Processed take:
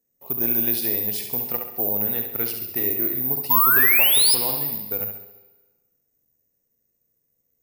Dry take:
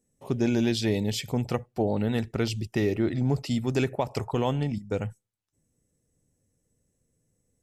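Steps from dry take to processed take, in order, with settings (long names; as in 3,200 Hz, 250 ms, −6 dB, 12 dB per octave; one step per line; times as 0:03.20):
flutter between parallel walls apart 11.6 metres, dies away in 0.63 s
sound drawn into the spectrogram rise, 0:03.50–0:04.35, 930–5,300 Hz −18 dBFS
bad sample-rate conversion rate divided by 3×, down filtered, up zero stuff
low-shelf EQ 250 Hz −12 dB
notch filter 3,200 Hz, Q 11
four-comb reverb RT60 1.3 s, combs from 31 ms, DRR 10.5 dB
level −3 dB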